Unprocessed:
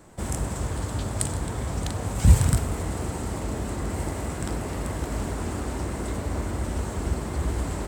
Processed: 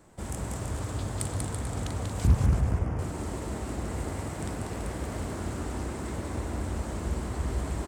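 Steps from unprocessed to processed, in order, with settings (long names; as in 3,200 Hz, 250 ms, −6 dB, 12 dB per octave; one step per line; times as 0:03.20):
0:02.27–0:02.99: moving average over 11 samples
bouncing-ball delay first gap 190 ms, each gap 0.75×, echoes 5
highs frequency-modulated by the lows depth 0.92 ms
level −6 dB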